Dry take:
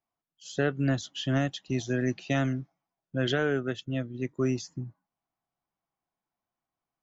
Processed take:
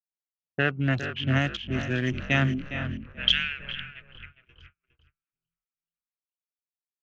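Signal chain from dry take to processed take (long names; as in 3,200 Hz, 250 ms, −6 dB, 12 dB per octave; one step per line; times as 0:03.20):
adaptive Wiener filter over 25 samples
dynamic equaliser 5,700 Hz, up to +5 dB, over −57 dBFS, Q 2.3
high-pass filter sweep 72 Hz → 2,800 Hz, 0:02.33–0:03.15
echo with shifted repeats 434 ms, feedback 59%, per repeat −43 Hz, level −12 dB
noise gate −45 dBFS, range −34 dB
single-tap delay 410 ms −10.5 dB
low-pass that shuts in the quiet parts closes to 850 Hz, open at −22.5 dBFS
drawn EQ curve 160 Hz 0 dB, 450 Hz −3 dB, 2,700 Hz +13 dB, 4,500 Hz −3 dB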